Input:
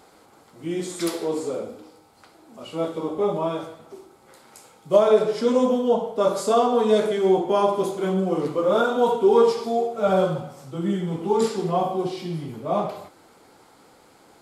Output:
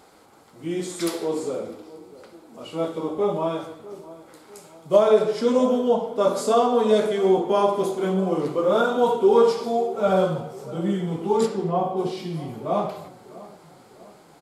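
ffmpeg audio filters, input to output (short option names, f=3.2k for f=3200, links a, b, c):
-filter_complex "[0:a]asplit=3[a][b][c];[a]afade=t=out:st=11.45:d=0.02[d];[b]highshelf=f=2.5k:g=-11,afade=t=in:st=11.45:d=0.02,afade=t=out:st=11.96:d=0.02[e];[c]afade=t=in:st=11.96:d=0.02[f];[d][e][f]amix=inputs=3:normalize=0,asplit=2[g][h];[h]adelay=650,lowpass=f=1.6k:p=1,volume=-18dB,asplit=2[i][j];[j]adelay=650,lowpass=f=1.6k:p=1,volume=0.53,asplit=2[k][l];[l]adelay=650,lowpass=f=1.6k:p=1,volume=0.53,asplit=2[m][n];[n]adelay=650,lowpass=f=1.6k:p=1,volume=0.53[o];[g][i][k][m][o]amix=inputs=5:normalize=0"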